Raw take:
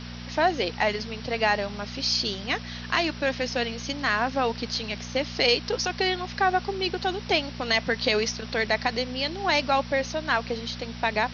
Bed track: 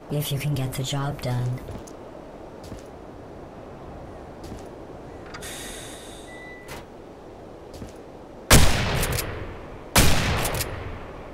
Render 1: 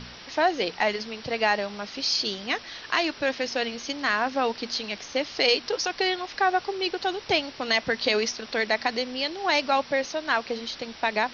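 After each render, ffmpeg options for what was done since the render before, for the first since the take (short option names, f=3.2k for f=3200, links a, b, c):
-af "bandreject=f=60:t=h:w=4,bandreject=f=120:t=h:w=4,bandreject=f=180:t=h:w=4,bandreject=f=240:t=h:w=4"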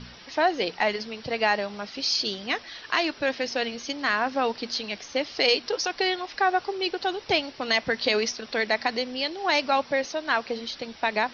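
-af "afftdn=nr=6:nf=-44"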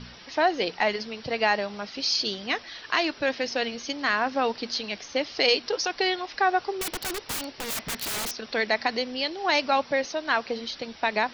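-filter_complex "[0:a]asettb=1/sr,asplit=3[a][b][c];[a]atrim=end=6.814[d];[b]atrim=start=6.81:end=8.39,asetpts=PTS-STARTPTS,afade=t=in:d=0.004:c=qsin,afade=t=out:st=1.576:d=0.004:c=qsin,aeval=exprs='(mod(18.8*val(0)+1,2)-1)/18.8':c=same[e];[c]atrim=start=8.386[f];[d][e]acrossfade=d=0.004:c1=hsin:c2=qsin[g];[g][f]acrossfade=d=0.004:c1=qsin:c2=hsin"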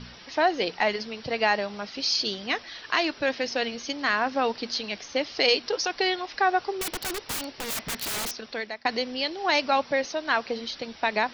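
-filter_complex "[0:a]asplit=2[a][b];[a]atrim=end=8.85,asetpts=PTS-STARTPTS,afade=t=out:st=8.27:d=0.58:silence=0.0749894[c];[b]atrim=start=8.85,asetpts=PTS-STARTPTS,afade=t=in:d=0.004:c=hsin:silence=0.0749894[d];[c][d]concat=n=2:v=0:a=1"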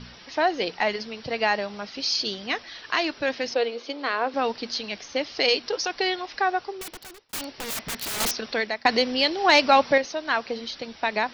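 -filter_complex "[0:a]asettb=1/sr,asplit=3[a][b][c];[a]atrim=end=3.544[d];[b]atrim=start=3.54:end=4.34,asetpts=PTS-STARTPTS,afade=t=in:d=0.004:c=qsin,afade=t=out:st=0.796:d=0.004:c=qsin,highpass=f=270:w=0.5412,highpass=f=270:w=1.3066,equalizer=f=480:t=q:w=4:g=8,equalizer=f=1.8k:t=q:w=4:g=-6,equalizer=f=2.9k:t=q:w=4:g=-3,lowpass=f=4.4k:w=0.5412,lowpass=f=4.4k:w=1.3066[e];[c]atrim=start=4.336[f];[d][e]acrossfade=d=0.004:c1=hsin:c2=qsin[g];[g][f]acrossfade=d=0.004:c1=qsin:c2=hsin,asettb=1/sr,asplit=3[h][i][j];[h]atrim=end=8.204[k];[i]atrim=start=8.2:end=9.98,asetpts=PTS-STARTPTS,afade=t=in:d=0.004:c=qsin,afade=t=out:st=1.776:d=0.004:c=qsin,acontrast=67[l];[j]atrim=start=9.976[m];[k][l]acrossfade=d=0.004:c1=hsin:c2=qsin[n];[n][m]acrossfade=d=0.004:c1=qsin:c2=hsin,asplit=2[o][p];[o]atrim=end=7.33,asetpts=PTS-STARTPTS,afade=t=out:st=6.36:d=0.97[q];[p]atrim=start=7.33,asetpts=PTS-STARTPTS,afade=t=in:d=0.004:c=hsin[r];[q][r]concat=n=2:v=0:a=1"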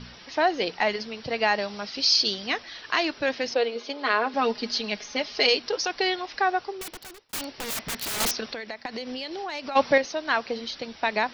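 -filter_complex "[0:a]asettb=1/sr,asplit=3[a][b][c];[a]atrim=end=1.584[d];[b]atrim=start=1.58:end=2.5,asetpts=PTS-STARTPTS,afade=t=in:d=0.004:c=qsin,afade=t=out:st=0.916:d=0.004:c=qsin,lowpass=f=5.4k:t=q:w=1.8[e];[c]atrim=start=2.496[f];[d][e]acrossfade=d=0.004:c1=hsin:c2=qsin[g];[g][f]acrossfade=d=0.004:c1=qsin:c2=hsin,asettb=1/sr,asplit=3[h][i][j];[h]atrim=end=3.754[k];[i]atrim=start=3.75:end=5.47,asetpts=PTS-STARTPTS,afade=t=in:d=0.004:c=qsin,afade=t=out:st=1.716:d=0.004:c=qsin,aecho=1:1:4.8:0.65,atrim=end_sample=75852[l];[j]atrim=start=5.466[m];[k][l]acrossfade=d=0.004:c1=hsin:c2=qsin[n];[n][m]acrossfade=d=0.004:c1=qsin:c2=hsin,asplit=3[o][p][q];[o]afade=t=out:st=8.52:d=0.02[r];[p]acompressor=threshold=-30dB:ratio=8:attack=3.2:release=140:knee=1:detection=peak,afade=t=in:st=8.52:d=0.02,afade=t=out:st=9.75:d=0.02[s];[q]afade=t=in:st=9.75:d=0.02[t];[r][s][t]amix=inputs=3:normalize=0"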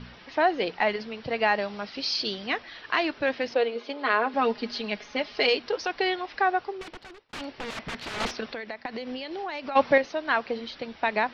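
-af "lowpass=3.1k"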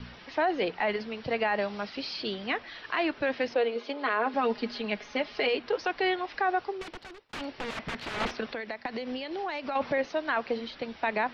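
-filter_complex "[0:a]acrossover=split=300|850|3400[a][b][c][d];[d]acompressor=threshold=-48dB:ratio=6[e];[a][b][c][e]amix=inputs=4:normalize=0,alimiter=limit=-18.5dB:level=0:latency=1:release=15"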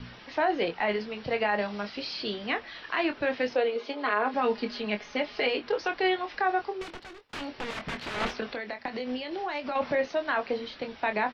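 -filter_complex "[0:a]asplit=2[a][b];[b]adelay=24,volume=-7.5dB[c];[a][c]amix=inputs=2:normalize=0"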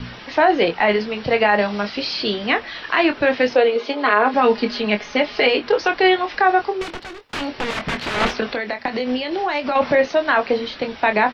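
-af "volume=11dB"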